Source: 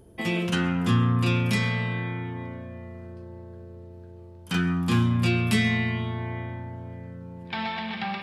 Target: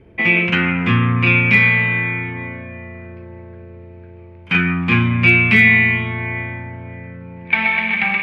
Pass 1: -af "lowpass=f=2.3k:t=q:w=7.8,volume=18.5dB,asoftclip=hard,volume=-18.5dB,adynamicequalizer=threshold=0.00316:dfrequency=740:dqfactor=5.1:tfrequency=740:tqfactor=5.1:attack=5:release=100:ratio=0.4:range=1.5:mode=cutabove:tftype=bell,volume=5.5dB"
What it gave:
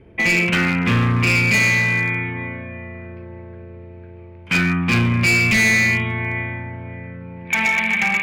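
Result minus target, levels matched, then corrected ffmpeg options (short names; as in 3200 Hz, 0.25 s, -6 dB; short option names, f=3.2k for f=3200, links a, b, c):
overloaded stage: distortion +36 dB
-af "lowpass=f=2.3k:t=q:w=7.8,volume=7.5dB,asoftclip=hard,volume=-7.5dB,adynamicequalizer=threshold=0.00316:dfrequency=740:dqfactor=5.1:tfrequency=740:tqfactor=5.1:attack=5:release=100:ratio=0.4:range=1.5:mode=cutabove:tftype=bell,volume=5.5dB"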